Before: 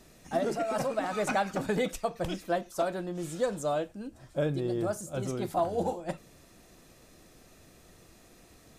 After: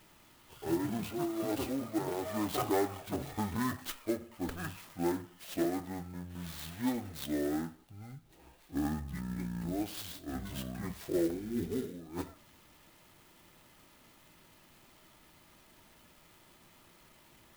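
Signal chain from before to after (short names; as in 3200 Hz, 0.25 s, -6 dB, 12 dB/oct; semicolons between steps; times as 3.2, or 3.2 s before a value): low shelf 470 Hz -11.5 dB; speed mistake 15 ips tape played at 7.5 ips; clock jitter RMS 0.048 ms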